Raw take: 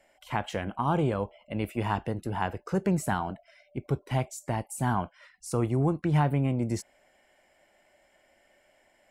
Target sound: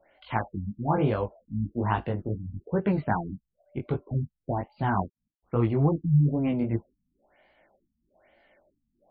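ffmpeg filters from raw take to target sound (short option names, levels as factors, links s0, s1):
-filter_complex "[0:a]flanger=delay=17.5:depth=3.6:speed=2.5,asettb=1/sr,asplit=3[s0][s1][s2];[s0]atrim=end=4.954[s3];[s1]atrim=start=4.95:end=5.66,asetpts=PTS-STARTPTS,afade=t=in:d=0.004:c=qsin,afade=t=out:st=0.706:d=0.004:c=qsin,aeval=exprs='sgn(val(0))*max(abs(val(0))-0.00141,0)':c=same[s4];[s2]atrim=start=5.656[s5];[s3][s4]acrossfade=d=0.004:c1=hsin:c2=qsin[s6];[s6][s5]acrossfade=d=0.004:c1=qsin:c2=hsin,afftfilt=real='re*lt(b*sr/1024,250*pow(5000/250,0.5+0.5*sin(2*PI*1.1*pts/sr)))':imag='im*lt(b*sr/1024,250*pow(5000/250,0.5+0.5*sin(2*PI*1.1*pts/sr)))':win_size=1024:overlap=0.75,volume=1.78"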